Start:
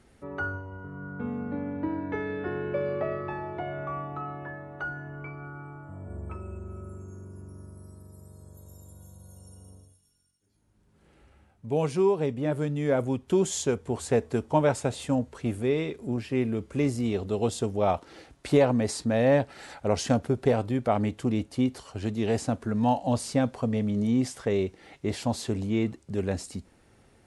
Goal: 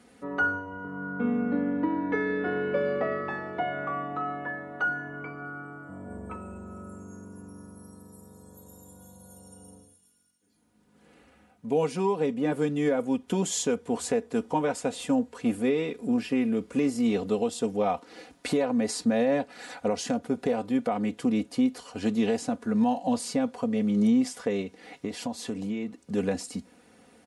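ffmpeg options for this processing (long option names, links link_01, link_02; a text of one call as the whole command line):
ffmpeg -i in.wav -filter_complex "[0:a]highpass=140,aecho=1:1:4.1:0.69,alimiter=limit=-19dB:level=0:latency=1:release=469,asplit=3[link_01][link_02][link_03];[link_01]afade=type=out:start_time=24.61:duration=0.02[link_04];[link_02]acompressor=threshold=-33dB:ratio=4,afade=type=in:start_time=24.61:duration=0.02,afade=type=out:start_time=26.06:duration=0.02[link_05];[link_03]afade=type=in:start_time=26.06:duration=0.02[link_06];[link_04][link_05][link_06]amix=inputs=3:normalize=0,volume=3dB" out.wav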